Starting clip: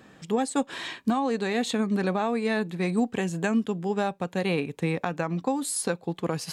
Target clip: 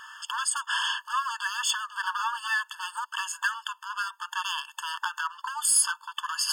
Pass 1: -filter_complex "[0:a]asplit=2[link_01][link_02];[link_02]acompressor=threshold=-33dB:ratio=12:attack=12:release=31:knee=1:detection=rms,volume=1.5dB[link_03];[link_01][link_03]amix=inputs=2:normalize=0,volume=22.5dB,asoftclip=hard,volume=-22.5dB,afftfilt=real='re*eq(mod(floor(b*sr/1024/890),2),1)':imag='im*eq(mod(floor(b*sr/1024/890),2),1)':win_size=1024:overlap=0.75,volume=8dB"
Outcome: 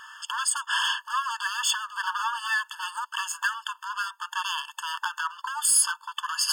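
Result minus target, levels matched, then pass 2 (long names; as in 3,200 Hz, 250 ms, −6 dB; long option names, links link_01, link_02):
downward compressor: peak gain reduction −7 dB
-filter_complex "[0:a]asplit=2[link_01][link_02];[link_02]acompressor=threshold=-40.5dB:ratio=12:attack=12:release=31:knee=1:detection=rms,volume=1.5dB[link_03];[link_01][link_03]amix=inputs=2:normalize=0,volume=22.5dB,asoftclip=hard,volume=-22.5dB,afftfilt=real='re*eq(mod(floor(b*sr/1024/890),2),1)':imag='im*eq(mod(floor(b*sr/1024/890),2),1)':win_size=1024:overlap=0.75,volume=8dB"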